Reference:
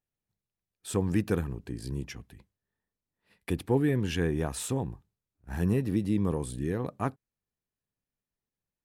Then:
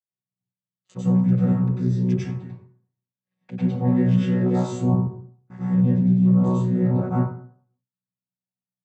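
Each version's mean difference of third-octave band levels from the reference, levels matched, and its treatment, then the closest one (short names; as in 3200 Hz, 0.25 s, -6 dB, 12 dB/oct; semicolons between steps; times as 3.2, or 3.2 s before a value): 12.0 dB: chord vocoder bare fifth, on B2; gate with hold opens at -48 dBFS; reverse; compressor, threshold -35 dBFS, peak gain reduction 13.5 dB; reverse; plate-style reverb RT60 0.56 s, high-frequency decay 0.6×, pre-delay 85 ms, DRR -9 dB; gain +7 dB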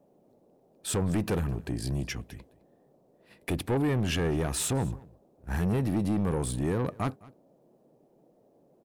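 5.0 dB: in parallel at +2.5 dB: limiter -24.5 dBFS, peak gain reduction 9.5 dB; on the sum: soft clip -22.5 dBFS, distortion -10 dB; band noise 130–650 Hz -63 dBFS; echo 0.211 s -22.5 dB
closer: second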